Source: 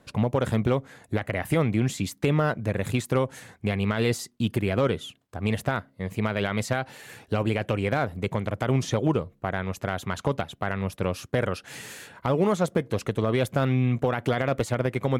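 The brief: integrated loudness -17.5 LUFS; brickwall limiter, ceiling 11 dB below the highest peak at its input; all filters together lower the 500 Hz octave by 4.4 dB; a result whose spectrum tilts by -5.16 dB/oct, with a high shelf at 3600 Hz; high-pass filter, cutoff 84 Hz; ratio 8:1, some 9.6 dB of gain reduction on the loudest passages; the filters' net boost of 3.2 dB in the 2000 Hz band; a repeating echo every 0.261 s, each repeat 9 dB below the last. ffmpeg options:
-af "highpass=84,equalizer=f=500:t=o:g=-5.5,equalizer=f=2k:t=o:g=5.5,highshelf=f=3.6k:g=-4,acompressor=threshold=-30dB:ratio=8,alimiter=level_in=1dB:limit=-24dB:level=0:latency=1,volume=-1dB,aecho=1:1:261|522|783|1044:0.355|0.124|0.0435|0.0152,volume=20.5dB"

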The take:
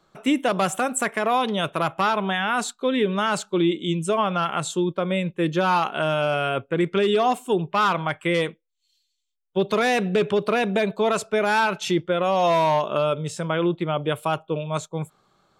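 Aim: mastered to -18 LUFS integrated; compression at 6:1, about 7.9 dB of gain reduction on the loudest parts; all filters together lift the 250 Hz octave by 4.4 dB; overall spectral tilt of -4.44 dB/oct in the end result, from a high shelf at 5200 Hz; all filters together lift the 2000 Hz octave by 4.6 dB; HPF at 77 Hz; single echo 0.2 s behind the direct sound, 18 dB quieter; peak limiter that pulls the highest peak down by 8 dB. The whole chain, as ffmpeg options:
-af "highpass=77,equalizer=f=250:t=o:g=6.5,equalizer=f=2k:t=o:g=7,highshelf=f=5.2k:g=-4.5,acompressor=threshold=-19dB:ratio=6,alimiter=limit=-15.5dB:level=0:latency=1,aecho=1:1:200:0.126,volume=8.5dB"

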